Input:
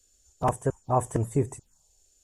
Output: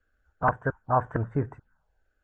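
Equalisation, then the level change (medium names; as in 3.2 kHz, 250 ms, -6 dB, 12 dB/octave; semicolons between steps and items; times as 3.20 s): resonant low-pass 1.5 kHz, resonance Q 9; distance through air 86 m; peaking EQ 380 Hz -7 dB 0.21 oct; -1.5 dB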